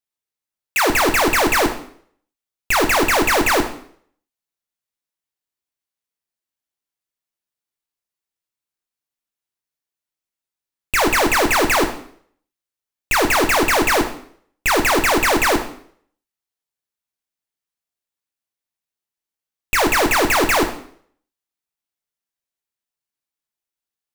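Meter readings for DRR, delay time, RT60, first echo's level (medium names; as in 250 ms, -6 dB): 5.0 dB, no echo, 0.60 s, no echo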